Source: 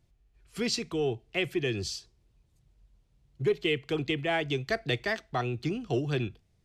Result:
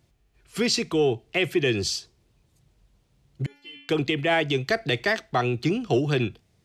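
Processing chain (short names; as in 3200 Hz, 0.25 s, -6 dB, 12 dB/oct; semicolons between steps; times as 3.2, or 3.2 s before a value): HPF 130 Hz 6 dB/oct; limiter -21.5 dBFS, peak gain reduction 5.5 dB; 3.46–3.89 metallic resonator 280 Hz, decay 0.69 s, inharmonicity 0.002; gain +8.5 dB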